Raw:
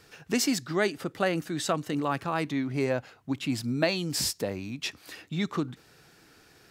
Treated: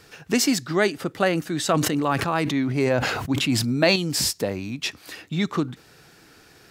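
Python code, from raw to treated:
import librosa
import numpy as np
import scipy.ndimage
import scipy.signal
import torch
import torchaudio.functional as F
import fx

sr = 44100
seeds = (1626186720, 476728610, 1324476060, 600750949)

y = fx.sustainer(x, sr, db_per_s=35.0, at=(1.69, 3.96))
y = y * librosa.db_to_amplitude(5.5)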